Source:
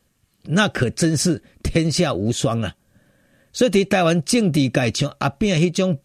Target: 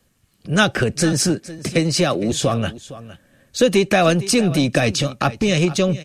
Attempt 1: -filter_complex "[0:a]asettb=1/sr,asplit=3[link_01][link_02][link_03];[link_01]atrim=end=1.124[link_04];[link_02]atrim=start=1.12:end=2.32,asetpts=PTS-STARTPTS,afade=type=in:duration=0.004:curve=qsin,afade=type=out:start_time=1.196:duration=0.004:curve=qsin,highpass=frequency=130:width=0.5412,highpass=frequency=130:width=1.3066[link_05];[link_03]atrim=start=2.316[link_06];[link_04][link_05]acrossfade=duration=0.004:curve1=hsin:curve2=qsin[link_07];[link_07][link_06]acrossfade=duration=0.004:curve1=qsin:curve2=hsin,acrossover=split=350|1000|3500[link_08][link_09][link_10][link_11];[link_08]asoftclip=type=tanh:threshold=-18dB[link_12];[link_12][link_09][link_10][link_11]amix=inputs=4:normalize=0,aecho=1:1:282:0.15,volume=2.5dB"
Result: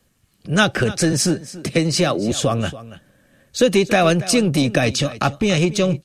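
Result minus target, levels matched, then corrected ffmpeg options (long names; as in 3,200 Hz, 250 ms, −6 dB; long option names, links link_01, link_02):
echo 179 ms early
-filter_complex "[0:a]asettb=1/sr,asplit=3[link_01][link_02][link_03];[link_01]atrim=end=1.124[link_04];[link_02]atrim=start=1.12:end=2.32,asetpts=PTS-STARTPTS,afade=type=in:duration=0.004:curve=qsin,afade=type=out:start_time=1.196:duration=0.004:curve=qsin,highpass=frequency=130:width=0.5412,highpass=frequency=130:width=1.3066[link_05];[link_03]atrim=start=2.316[link_06];[link_04][link_05]acrossfade=duration=0.004:curve1=hsin:curve2=qsin[link_07];[link_07][link_06]acrossfade=duration=0.004:curve1=qsin:curve2=hsin,acrossover=split=350|1000|3500[link_08][link_09][link_10][link_11];[link_08]asoftclip=type=tanh:threshold=-18dB[link_12];[link_12][link_09][link_10][link_11]amix=inputs=4:normalize=0,aecho=1:1:461:0.15,volume=2.5dB"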